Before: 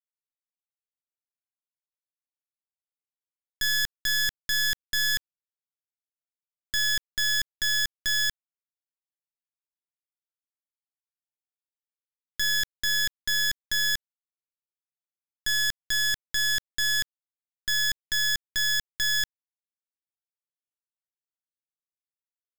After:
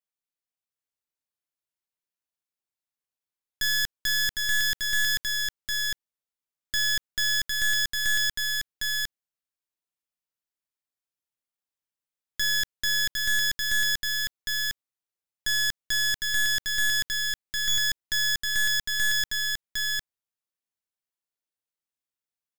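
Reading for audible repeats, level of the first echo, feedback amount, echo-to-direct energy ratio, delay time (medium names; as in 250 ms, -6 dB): 1, -3.0 dB, no regular repeats, -3.0 dB, 756 ms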